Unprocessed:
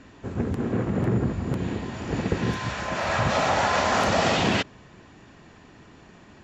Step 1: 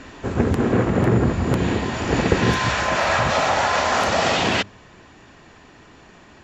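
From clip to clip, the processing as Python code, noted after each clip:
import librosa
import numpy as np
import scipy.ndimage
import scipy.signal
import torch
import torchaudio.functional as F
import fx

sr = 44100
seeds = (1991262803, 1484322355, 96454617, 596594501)

y = fx.peak_eq(x, sr, hz=170.0, db=-5.0, octaves=2.4)
y = fx.hum_notches(y, sr, base_hz=50, count=4)
y = fx.rider(y, sr, range_db=4, speed_s=0.5)
y = F.gain(torch.from_numpy(y), 7.5).numpy()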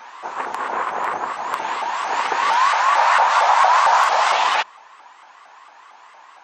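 y = fx.highpass_res(x, sr, hz=950.0, q=4.4)
y = fx.vibrato_shape(y, sr, shape='saw_up', rate_hz=4.4, depth_cents=250.0)
y = F.gain(torch.from_numpy(y), -1.5).numpy()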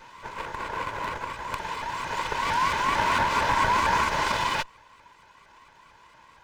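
y = fx.lower_of_two(x, sr, delay_ms=2.0)
y = F.gain(torch.from_numpy(y), -7.0).numpy()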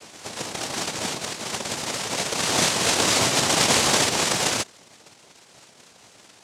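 y = fx.noise_vocoder(x, sr, seeds[0], bands=2)
y = F.gain(torch.from_numpy(y), 3.0).numpy()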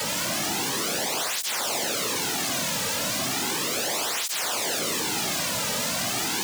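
y = np.sign(x) * np.sqrt(np.mean(np.square(x)))
y = y + 10.0 ** (-6.0 / 20.0) * np.pad(y, (int(92 * sr / 1000.0), 0))[:len(y)]
y = fx.flanger_cancel(y, sr, hz=0.35, depth_ms=2.9)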